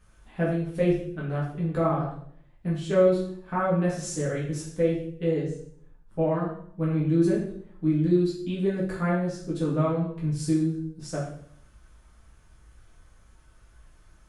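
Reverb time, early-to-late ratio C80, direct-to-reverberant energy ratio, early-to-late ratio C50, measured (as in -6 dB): 0.60 s, 7.5 dB, -6.5 dB, 4.5 dB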